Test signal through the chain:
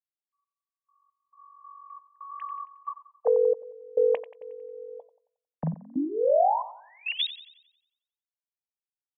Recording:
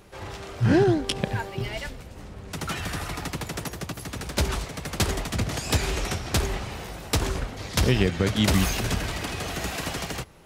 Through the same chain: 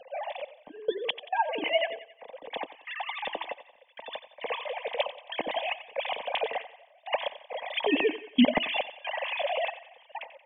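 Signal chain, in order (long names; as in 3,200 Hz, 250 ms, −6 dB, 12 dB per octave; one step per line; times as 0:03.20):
three sine waves on the formant tracks
hum removal 332.2 Hz, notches 4
in parallel at +0.5 dB: downward compressor, threshold −30 dBFS
on the sum: gate pattern "xx..x.xxx.xx.x" 68 BPM −24 dB
phaser with its sweep stopped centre 370 Hz, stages 6
on a send: feedback echo with a high-pass in the loop 90 ms, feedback 47%, high-pass 380 Hz, level −13.5 dB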